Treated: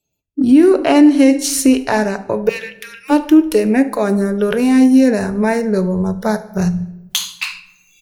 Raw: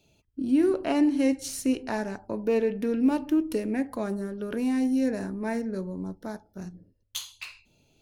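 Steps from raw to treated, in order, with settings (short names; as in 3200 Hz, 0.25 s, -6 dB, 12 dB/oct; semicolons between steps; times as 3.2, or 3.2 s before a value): recorder AGC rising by 8.6 dB/s; 2.49–3.1 HPF 1500 Hz 24 dB/oct; spectral noise reduction 29 dB; feedback echo 74 ms, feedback 47%, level -23 dB; on a send at -14 dB: reverb RT60 0.95 s, pre-delay 7 ms; on the sum: maximiser +16 dB; gain -1 dB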